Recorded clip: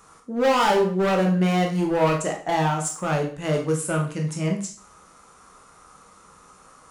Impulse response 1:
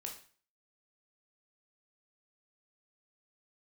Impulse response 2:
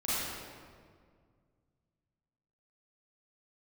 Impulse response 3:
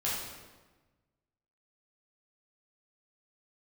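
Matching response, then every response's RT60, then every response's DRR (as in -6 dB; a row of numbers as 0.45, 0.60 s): 1; 0.45, 1.9, 1.3 s; 0.5, -11.5, -7.5 dB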